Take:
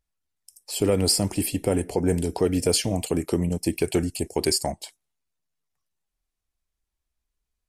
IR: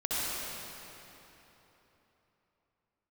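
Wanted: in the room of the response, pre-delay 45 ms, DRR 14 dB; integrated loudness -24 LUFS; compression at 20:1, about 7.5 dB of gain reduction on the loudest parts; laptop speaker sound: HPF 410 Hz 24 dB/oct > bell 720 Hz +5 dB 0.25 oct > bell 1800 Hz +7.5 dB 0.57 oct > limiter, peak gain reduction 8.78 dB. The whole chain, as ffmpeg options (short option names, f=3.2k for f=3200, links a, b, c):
-filter_complex "[0:a]acompressor=threshold=-24dB:ratio=20,asplit=2[a][b];[1:a]atrim=start_sample=2205,adelay=45[c];[b][c]afir=irnorm=-1:irlink=0,volume=-23dB[d];[a][d]amix=inputs=2:normalize=0,highpass=f=410:w=0.5412,highpass=f=410:w=1.3066,equalizer=f=720:t=o:w=0.25:g=5,equalizer=f=1.8k:t=o:w=0.57:g=7.5,volume=11.5dB,alimiter=limit=-12.5dB:level=0:latency=1"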